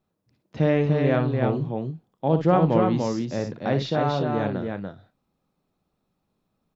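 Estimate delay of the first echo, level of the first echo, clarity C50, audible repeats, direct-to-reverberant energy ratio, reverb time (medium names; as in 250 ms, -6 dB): 57 ms, -9.0 dB, no reverb, 3, no reverb, no reverb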